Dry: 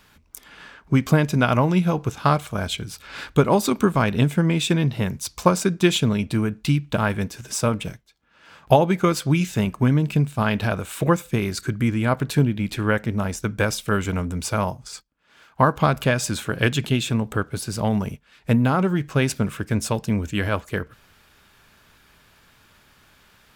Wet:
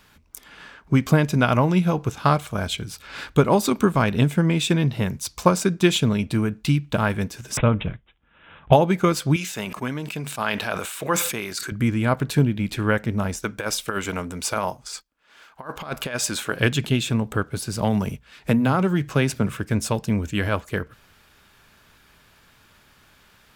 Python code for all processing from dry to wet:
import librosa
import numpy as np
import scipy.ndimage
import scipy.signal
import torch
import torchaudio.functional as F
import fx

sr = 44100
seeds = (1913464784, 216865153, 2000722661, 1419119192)

y = fx.chain(x, sr, fx.resample_bad(factor=6, down='none', up='filtered'),
    fx.low_shelf(hz=110.0, db=11.0), at=(7.57, 8.73))
y = fx.chain(y, sr, fx.highpass(hz=740.0, slope=6),
    fx.sustainer(db_per_s=46.0), at=(9.36, 11.72))
y = fx.chain(y, sr, fx.peak_eq(hz=99.0, db=-12.5, octaves=2.5),
    fx.over_compress(threshold_db=-25.0, ratio=-0.5), at=(13.39, 16.6))
y = fx.chain(y, sr, fx.hum_notches(base_hz=60, count=2),
    fx.band_squash(depth_pct=40), at=(17.82, 19.57))